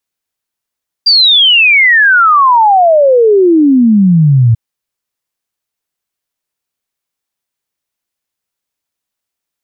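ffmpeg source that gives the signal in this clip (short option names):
-f lavfi -i "aevalsrc='0.668*clip(min(t,3.49-t)/0.01,0,1)*sin(2*PI*4800*3.49/log(110/4800)*(exp(log(110/4800)*t/3.49)-1))':d=3.49:s=44100"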